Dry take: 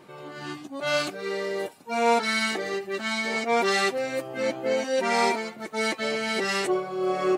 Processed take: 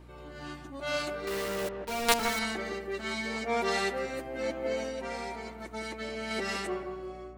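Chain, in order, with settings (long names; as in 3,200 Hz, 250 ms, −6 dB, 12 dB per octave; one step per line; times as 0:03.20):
fade-out on the ending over 0.91 s
0:01.27–0:02.39: log-companded quantiser 2 bits
0:04.86–0:06.31: downward compressor 5 to 1, threshold −29 dBFS, peak gain reduction 9.5 dB
mains hum 60 Hz, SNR 17 dB
on a send: delay with a low-pass on its return 163 ms, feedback 31%, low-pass 1,700 Hz, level −5.5 dB
on the sum: level −7 dB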